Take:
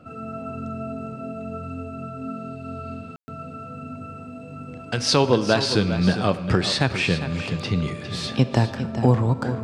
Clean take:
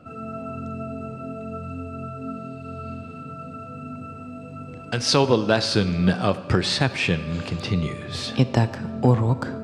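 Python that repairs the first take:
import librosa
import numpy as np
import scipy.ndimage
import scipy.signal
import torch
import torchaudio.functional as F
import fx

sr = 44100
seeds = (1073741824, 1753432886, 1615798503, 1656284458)

y = fx.fix_ambience(x, sr, seeds[0], print_start_s=4.42, print_end_s=4.92, start_s=3.16, end_s=3.28)
y = fx.fix_echo_inverse(y, sr, delay_ms=405, level_db=-11.0)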